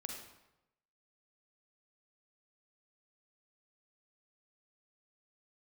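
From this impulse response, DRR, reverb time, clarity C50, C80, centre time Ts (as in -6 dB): 1.0 dB, 0.90 s, 2.5 dB, 5.5 dB, 44 ms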